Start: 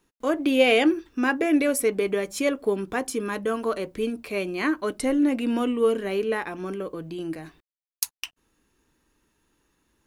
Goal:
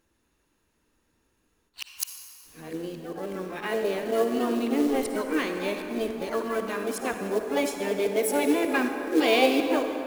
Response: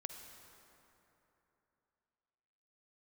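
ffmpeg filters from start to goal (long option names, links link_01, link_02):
-filter_complex "[0:a]areverse,asplit=3[link_01][link_02][link_03];[link_02]asetrate=55563,aresample=44100,atempo=0.793701,volume=-17dB[link_04];[link_03]asetrate=66075,aresample=44100,atempo=0.66742,volume=-7dB[link_05];[link_01][link_04][link_05]amix=inputs=3:normalize=0,acrusher=bits=5:mode=log:mix=0:aa=0.000001[link_06];[1:a]atrim=start_sample=2205[link_07];[link_06][link_07]afir=irnorm=-1:irlink=0"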